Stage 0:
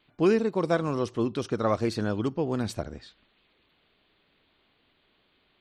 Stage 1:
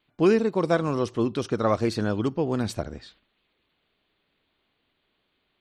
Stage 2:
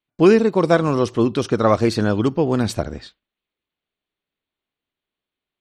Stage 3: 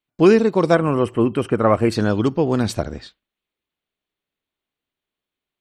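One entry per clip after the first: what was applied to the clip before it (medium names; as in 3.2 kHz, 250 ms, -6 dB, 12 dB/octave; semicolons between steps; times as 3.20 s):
gate -58 dBFS, range -8 dB; trim +2.5 dB
gate with hold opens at -35 dBFS; trim +7 dB
time-frequency box 0.75–1.92 s, 3.2–7.5 kHz -16 dB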